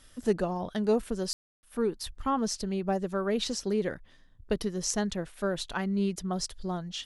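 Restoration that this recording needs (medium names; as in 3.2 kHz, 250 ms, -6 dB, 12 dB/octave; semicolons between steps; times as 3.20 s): room tone fill 1.33–1.63 s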